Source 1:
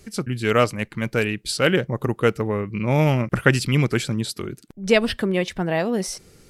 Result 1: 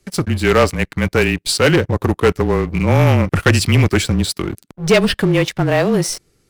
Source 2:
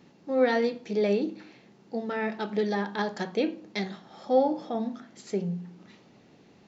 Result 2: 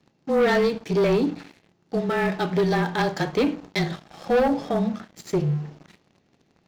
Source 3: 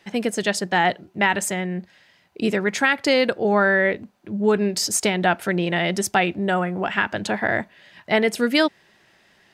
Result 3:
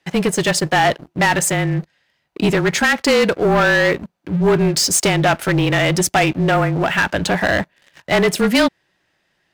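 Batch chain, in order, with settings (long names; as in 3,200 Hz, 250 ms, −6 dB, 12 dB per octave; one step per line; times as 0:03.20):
frequency shifter −27 Hz
leveller curve on the samples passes 3
level −3 dB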